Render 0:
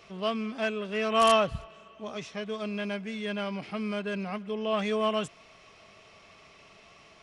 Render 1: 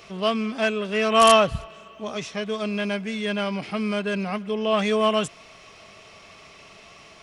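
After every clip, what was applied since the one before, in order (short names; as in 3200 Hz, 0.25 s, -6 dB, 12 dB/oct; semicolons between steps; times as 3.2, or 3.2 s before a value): high shelf 6400 Hz +6 dB; gain +6.5 dB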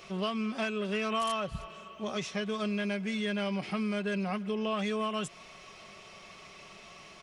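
comb 5.4 ms, depth 38%; compressor 10:1, threshold -25 dBFS, peak gain reduction 15 dB; gain -3.5 dB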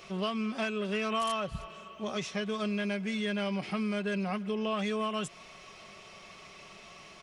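nothing audible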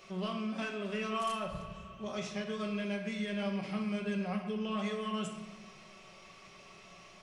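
shoebox room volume 470 m³, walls mixed, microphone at 1.1 m; gain -6.5 dB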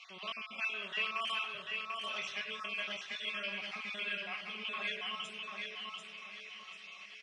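random spectral dropouts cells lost 33%; band-pass 2700 Hz, Q 1.9; feedback echo 0.741 s, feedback 35%, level -4 dB; gain +9 dB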